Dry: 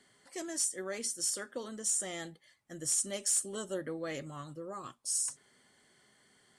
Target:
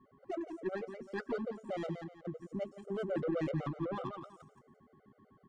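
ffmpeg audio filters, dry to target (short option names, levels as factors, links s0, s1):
-af "adynamicequalizer=threshold=0.00355:dfrequency=530:dqfactor=0.71:tfrequency=530:tqfactor=0.71:attack=5:release=100:ratio=0.375:range=2.5:mode=cutabove:tftype=bell,areverse,acompressor=threshold=0.00891:ratio=8,areverse,aeval=exprs='val(0)+0.000501*sin(2*PI*1100*n/s)':c=same,adynamicsmooth=sensitivity=6:basefreq=510,atempo=1.2,aecho=1:1:172|344|516:0.398|0.115|0.0335,afftfilt=real='re*gt(sin(2*PI*7.9*pts/sr)*(1-2*mod(floor(b*sr/1024/390),2)),0)':imag='im*gt(sin(2*PI*7.9*pts/sr)*(1-2*mod(floor(b*sr/1024/390),2)),0)':win_size=1024:overlap=0.75,volume=4.73"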